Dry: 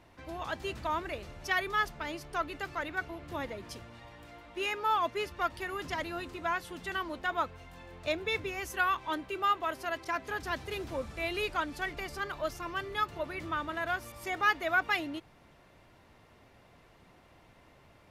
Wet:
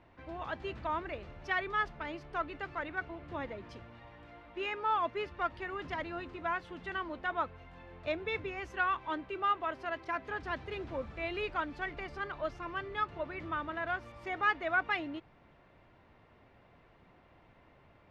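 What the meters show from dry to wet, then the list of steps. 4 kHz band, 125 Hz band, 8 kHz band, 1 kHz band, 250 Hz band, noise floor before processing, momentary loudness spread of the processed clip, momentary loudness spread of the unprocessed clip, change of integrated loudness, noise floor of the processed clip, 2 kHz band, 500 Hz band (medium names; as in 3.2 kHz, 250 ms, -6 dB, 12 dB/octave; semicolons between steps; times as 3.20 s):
-6.5 dB, -2.0 dB, under -15 dB, -2.0 dB, -2.0 dB, -60 dBFS, 12 LU, 11 LU, -2.5 dB, -63 dBFS, -2.5 dB, -2.0 dB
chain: low-pass 2.8 kHz 12 dB/octave; trim -2 dB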